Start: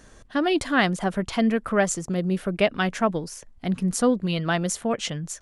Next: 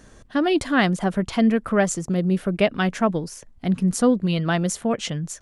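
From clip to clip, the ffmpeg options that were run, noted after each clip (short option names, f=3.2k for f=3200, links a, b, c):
-af "equalizer=f=160:w=0.43:g=4"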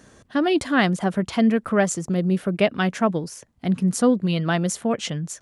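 -af "highpass=82"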